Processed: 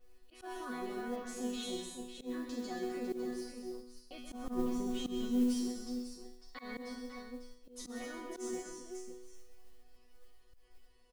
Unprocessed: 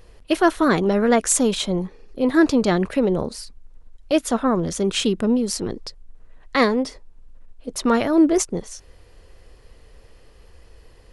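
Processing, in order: peak limiter -14 dBFS, peak gain reduction 10 dB; 4.18–5.24 s: tilt EQ -2.5 dB/octave; chord resonator B3 fifth, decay 0.71 s; multi-tap echo 129/187/188/255/364/550 ms -8/-13.5/-17/-10/-19/-8.5 dB; slow attack 113 ms; modulation noise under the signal 27 dB; 1.16–1.63 s: peaking EQ 9.2 kHz -11.5 dB 0.72 oct; trim +3.5 dB

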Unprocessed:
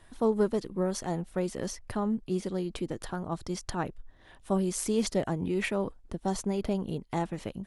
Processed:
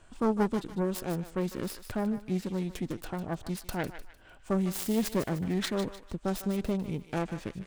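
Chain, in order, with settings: self-modulated delay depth 0.4 ms; formant shift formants -3 st; thinning echo 151 ms, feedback 41%, high-pass 1.1 kHz, level -9 dB

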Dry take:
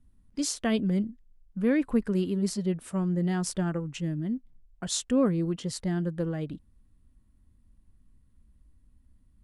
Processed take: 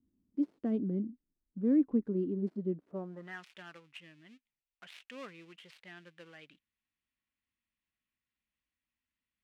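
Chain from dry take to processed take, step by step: dead-time distortion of 0.096 ms; band-pass sweep 300 Hz -> 2.5 kHz, 2.85–3.42 s

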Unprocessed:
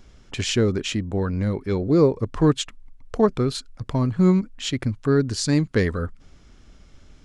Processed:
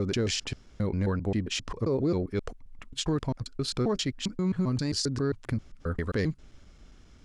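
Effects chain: slices played last to first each 133 ms, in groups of 6; dynamic bell 5 kHz, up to +6 dB, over -47 dBFS, Q 2.9; peak limiter -16.5 dBFS, peak gain reduction 9.5 dB; trim -3.5 dB

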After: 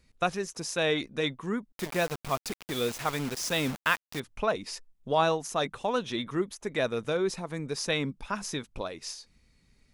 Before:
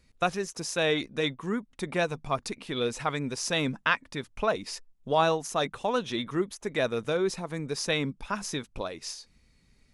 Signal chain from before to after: 1.72–4.20 s: word length cut 6-bit, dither none; trim -1 dB

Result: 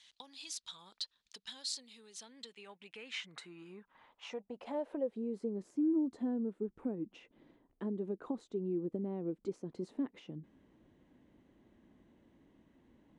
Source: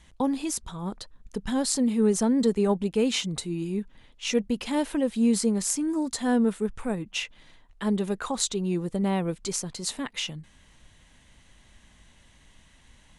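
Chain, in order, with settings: compression 6:1, threshold -34 dBFS, peak gain reduction 15.5 dB; band-pass sweep 4.1 kHz -> 320 Hz, 2.06–5.66 s; trim +5.5 dB

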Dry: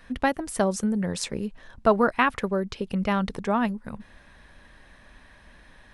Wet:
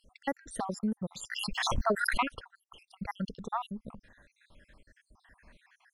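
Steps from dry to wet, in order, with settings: random holes in the spectrogram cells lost 68%; 1.30–2.28 s: swell ahead of each attack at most 23 dB/s; trim -5.5 dB

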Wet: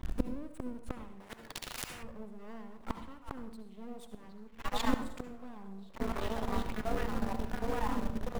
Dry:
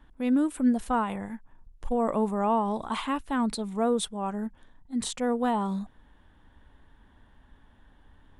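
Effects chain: coarse spectral quantiser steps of 15 dB; bass shelf 290 Hz +11.5 dB; repeats whose band climbs or falls 763 ms, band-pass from 3.2 kHz, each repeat -0.7 oct, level -8 dB; in parallel at -9 dB: bit crusher 7-bit; on the sum: half-wave rectifier; inverted gate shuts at -22 dBFS, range -31 dB; on a send at -8 dB: reverberation RT60 0.65 s, pre-delay 61 ms; 1.20–2.03 s: on the sum: spectrum-flattening compressor 4:1; trim +7.5 dB

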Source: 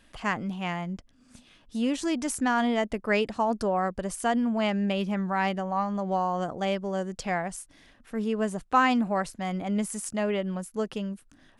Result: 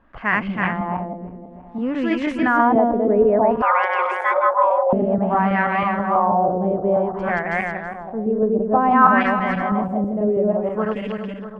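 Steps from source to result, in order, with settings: backward echo that repeats 162 ms, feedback 63%, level 0 dB; LFO low-pass sine 0.56 Hz 460–2200 Hz; 3.62–4.93 s: frequency shift +340 Hz; trim +2.5 dB

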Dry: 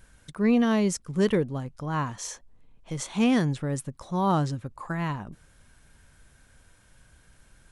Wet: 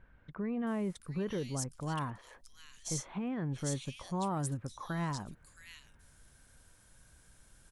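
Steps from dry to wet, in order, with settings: treble shelf 5.1 kHz +7 dB; peak limiter -23 dBFS, peak gain reduction 12 dB; bands offset in time lows, highs 670 ms, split 2.4 kHz; trim -5 dB

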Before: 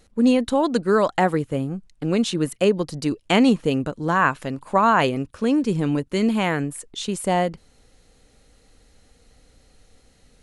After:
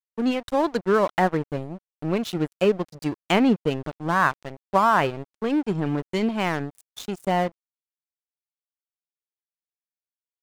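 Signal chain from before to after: spectral noise reduction 8 dB; low-pass that closes with the level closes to 2.4 kHz, closed at -14 dBFS; crossover distortion -31.5 dBFS

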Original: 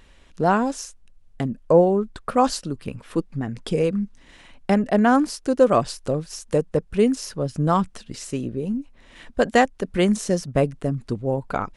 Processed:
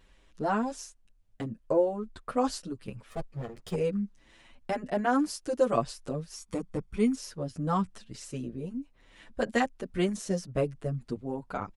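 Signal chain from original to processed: 3.10–3.75 s: comb filter that takes the minimum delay 1.6 ms; 5.19–5.73 s: treble shelf 5 kHz +5.5 dB; 6.36–7.15 s: comb 0.9 ms, depth 55%; endless flanger 7.8 ms +0.78 Hz; trim -6 dB

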